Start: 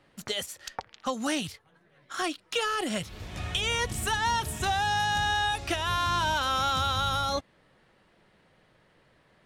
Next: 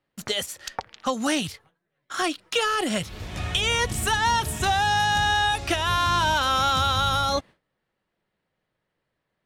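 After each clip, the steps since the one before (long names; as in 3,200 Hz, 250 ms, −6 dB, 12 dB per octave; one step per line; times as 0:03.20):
noise gate with hold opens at −50 dBFS
level +5 dB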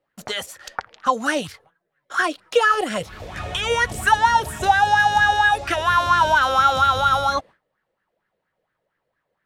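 auto-filter bell 4.3 Hz 480–1,700 Hz +16 dB
level −3 dB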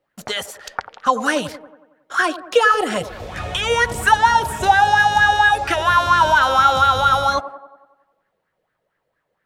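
delay with a band-pass on its return 92 ms, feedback 56%, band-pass 550 Hz, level −11.5 dB
level +2.5 dB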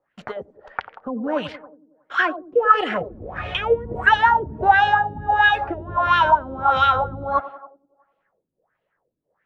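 auto-filter low-pass sine 1.5 Hz 270–3,000 Hz
level −4 dB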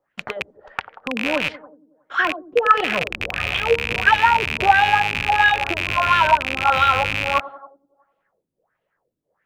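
loose part that buzzes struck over −37 dBFS, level −9 dBFS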